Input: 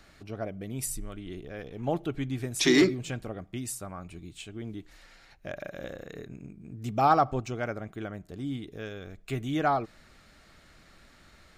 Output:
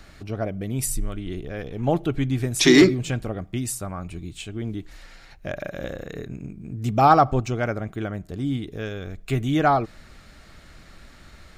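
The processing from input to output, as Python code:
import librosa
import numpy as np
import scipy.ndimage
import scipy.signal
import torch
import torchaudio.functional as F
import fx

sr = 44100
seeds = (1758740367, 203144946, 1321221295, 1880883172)

y = fx.low_shelf(x, sr, hz=130.0, db=6.5)
y = y * 10.0 ** (6.5 / 20.0)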